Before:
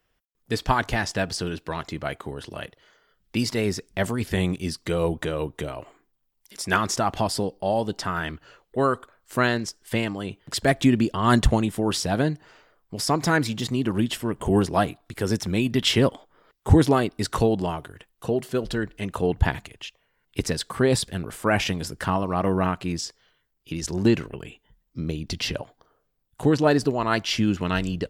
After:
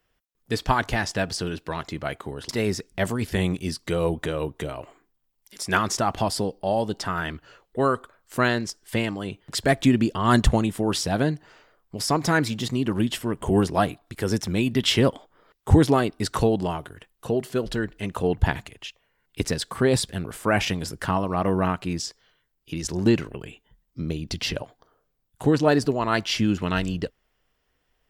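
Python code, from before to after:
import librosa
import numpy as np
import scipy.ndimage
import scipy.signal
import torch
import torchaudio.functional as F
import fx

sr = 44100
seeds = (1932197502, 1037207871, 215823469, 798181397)

y = fx.edit(x, sr, fx.cut(start_s=2.49, length_s=0.99), tone=tone)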